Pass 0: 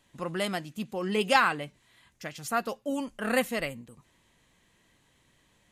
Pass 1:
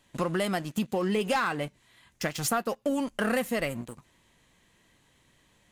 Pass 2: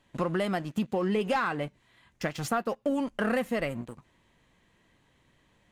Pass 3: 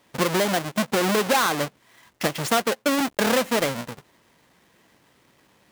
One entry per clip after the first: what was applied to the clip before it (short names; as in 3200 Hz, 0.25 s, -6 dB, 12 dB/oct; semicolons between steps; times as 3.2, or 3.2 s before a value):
dynamic EQ 3600 Hz, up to -4 dB, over -44 dBFS, Q 0.73; sample leveller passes 2; compressor 6:1, threshold -31 dBFS, peak gain reduction 15 dB; gain +5.5 dB
high shelf 4500 Hz -12 dB
half-waves squared off; HPF 340 Hz 6 dB/oct; gain +5 dB